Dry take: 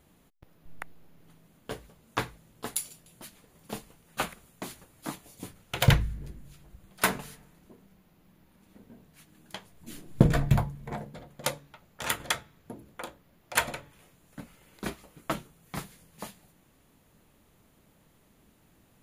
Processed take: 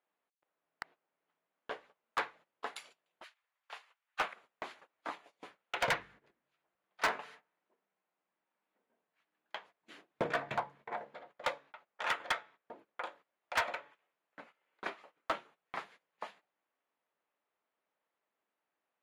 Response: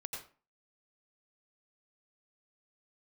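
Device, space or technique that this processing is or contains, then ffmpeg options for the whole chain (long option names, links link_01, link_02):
walkie-talkie: -filter_complex "[0:a]highpass=560,lowpass=2300,equalizer=frequency=140:width=0.36:gain=-5.5,asoftclip=type=hard:threshold=-27dB,agate=range=-18dB:threshold=-59dB:ratio=16:detection=peak,asettb=1/sr,asplit=3[link_01][link_02][link_03];[link_01]atrim=end=3.244[link_04];[link_02]atrim=start=3.24:end=4.19,asetpts=PTS-STARTPTS,afade=type=in:duration=0.004:curve=qsin,afade=type=out:start_time=0.946:duration=0.004:curve=qsin,highpass=1200[link_05];[link_03]atrim=start=4.186[link_06];[link_04][link_05]acrossfade=duration=0.004:curve1=hsin:curve2=qsin[link_07];[link_07][link_06]acrossfade=duration=0.004:curve1=qsin:curve2=hsin,asettb=1/sr,asplit=3[link_08][link_09][link_10];[link_08]atrim=end=13.054[link_11];[link_09]atrim=start=13.05:end=13.55,asetpts=PTS-STARTPTS,afade=type=in:duration=0.004:curve=qsin,afade=type=out:start_time=0.496:duration=0.004:curve=qsin,highshelf=frequency=5900:gain=9.5[link_12];[link_10]atrim=start=13.546[link_13];[link_11][link_12]acrossfade=duration=0.004:curve1=hsin:curve2=qsin[link_14];[link_14][link_13]acrossfade=duration=0.004:curve1=qsin:curve2=hsin,volume=2dB"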